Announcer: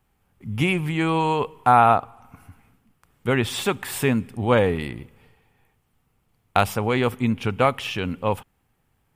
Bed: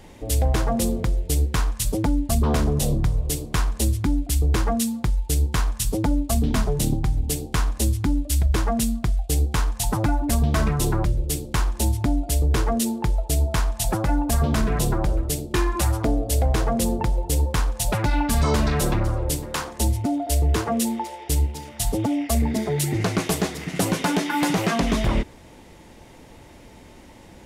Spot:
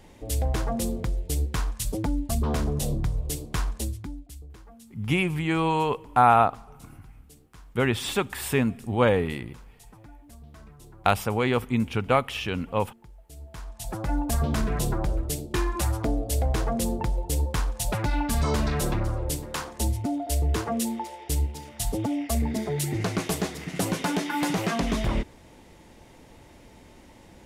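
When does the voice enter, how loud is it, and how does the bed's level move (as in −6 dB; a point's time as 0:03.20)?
4.50 s, −2.5 dB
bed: 0:03.71 −5.5 dB
0:04.58 −27.5 dB
0:13.20 −27.5 dB
0:14.16 −4.5 dB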